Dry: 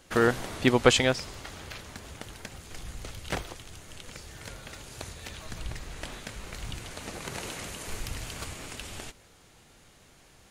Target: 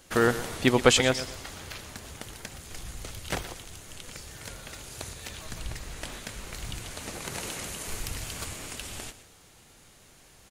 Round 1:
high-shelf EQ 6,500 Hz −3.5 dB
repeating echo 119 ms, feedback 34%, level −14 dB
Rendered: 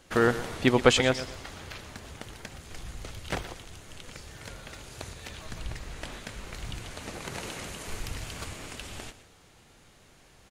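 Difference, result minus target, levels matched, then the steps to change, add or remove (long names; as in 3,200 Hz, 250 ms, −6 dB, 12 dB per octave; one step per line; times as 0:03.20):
8,000 Hz band −5.5 dB
change: high-shelf EQ 6,500 Hz +7 dB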